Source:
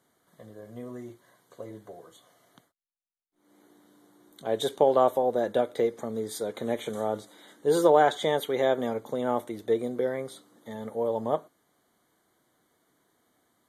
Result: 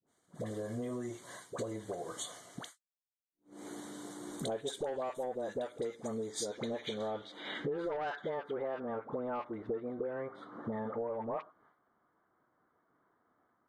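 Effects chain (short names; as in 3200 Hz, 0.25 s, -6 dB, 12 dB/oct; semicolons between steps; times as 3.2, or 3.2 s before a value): expander -56 dBFS; low-pass sweep 8000 Hz -> 1300 Hz, 6.13–8.37; soft clip -15.5 dBFS, distortion -14 dB; dispersion highs, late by 69 ms, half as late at 850 Hz; compressor 8:1, threshold -52 dBFS, peak gain reduction 31 dB; gain +15.5 dB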